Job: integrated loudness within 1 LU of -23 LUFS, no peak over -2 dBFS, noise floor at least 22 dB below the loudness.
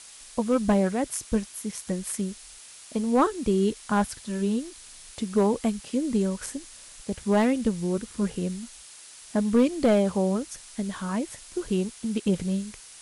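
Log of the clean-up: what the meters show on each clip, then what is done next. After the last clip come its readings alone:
clipped samples 0.3%; clipping level -13.5 dBFS; noise floor -47 dBFS; noise floor target -49 dBFS; loudness -27.0 LUFS; peak level -13.5 dBFS; loudness target -23.0 LUFS
-> clip repair -13.5 dBFS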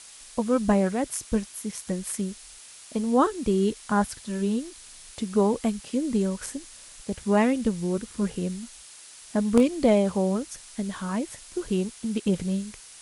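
clipped samples 0.0%; noise floor -47 dBFS; noise floor target -49 dBFS
-> noise reduction 6 dB, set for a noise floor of -47 dBFS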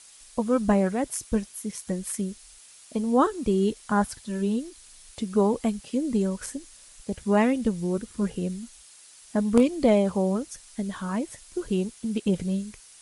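noise floor -51 dBFS; loudness -26.5 LUFS; peak level -4.5 dBFS; loudness target -23.0 LUFS
-> trim +3.5 dB; peak limiter -2 dBFS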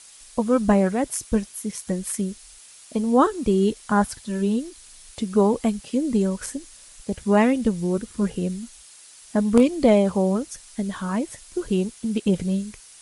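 loudness -23.0 LUFS; peak level -2.0 dBFS; noise floor -48 dBFS

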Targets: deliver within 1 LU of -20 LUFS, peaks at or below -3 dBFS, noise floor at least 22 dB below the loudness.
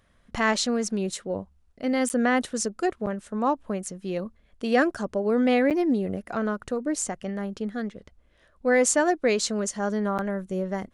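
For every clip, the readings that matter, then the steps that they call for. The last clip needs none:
dropouts 4; longest dropout 8.2 ms; loudness -26.0 LUFS; peak level -9.5 dBFS; loudness target -20.0 LUFS
-> interpolate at 2.09/3.06/5.70/10.18 s, 8.2 ms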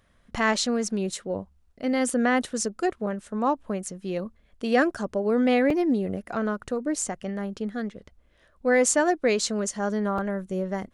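dropouts 0; loudness -26.0 LUFS; peak level -9.5 dBFS; loudness target -20.0 LUFS
-> trim +6 dB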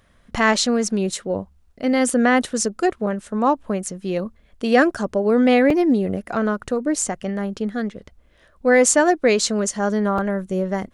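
loudness -20.0 LUFS; peak level -3.5 dBFS; noise floor -56 dBFS

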